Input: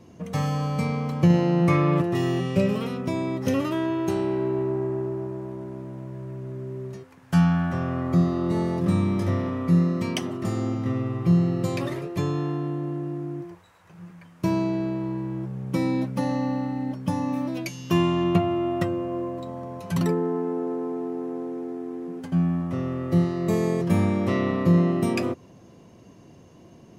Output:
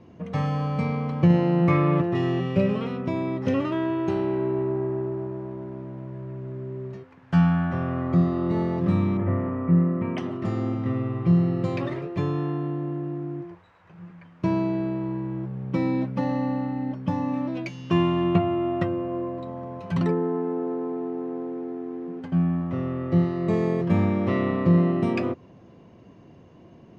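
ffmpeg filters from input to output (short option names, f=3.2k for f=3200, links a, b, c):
-filter_complex "[0:a]asettb=1/sr,asplit=3[a][b][c];[a]atrim=end=9.174[d];[b]atrim=start=9.17:end=10.18,asetpts=PTS-STARTPTS,afade=t=in:d=0.004:c=qsin,afade=t=out:st=1.006:d=0.004:c=qsin,asuperstop=centerf=5500:order=4:qfactor=0.52[e];[c]atrim=start=10.176[f];[d][e]acrossfade=d=0.004:c1=hsin:c2=qsin[g];[g][f]acrossfade=d=0.004:c1=qsin:c2=hsin,lowpass=3.1k"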